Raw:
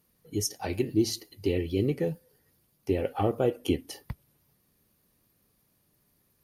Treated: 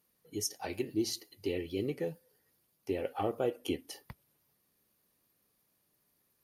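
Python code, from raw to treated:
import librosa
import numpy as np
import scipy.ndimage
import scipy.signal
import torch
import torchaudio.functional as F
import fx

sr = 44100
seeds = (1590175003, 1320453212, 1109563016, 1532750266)

y = fx.low_shelf(x, sr, hz=200.0, db=-11.5)
y = y * librosa.db_to_amplitude(-4.0)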